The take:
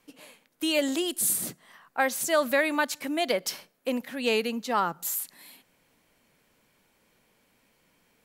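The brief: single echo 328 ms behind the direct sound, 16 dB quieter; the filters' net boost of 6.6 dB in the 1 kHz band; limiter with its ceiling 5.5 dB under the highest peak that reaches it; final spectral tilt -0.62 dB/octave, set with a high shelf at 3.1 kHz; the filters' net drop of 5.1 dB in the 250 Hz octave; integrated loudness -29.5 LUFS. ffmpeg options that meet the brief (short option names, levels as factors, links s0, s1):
-af "equalizer=f=250:t=o:g=-7,equalizer=f=1000:t=o:g=8,highshelf=f=3100:g=7.5,alimiter=limit=0.251:level=0:latency=1,aecho=1:1:328:0.158,volume=0.562"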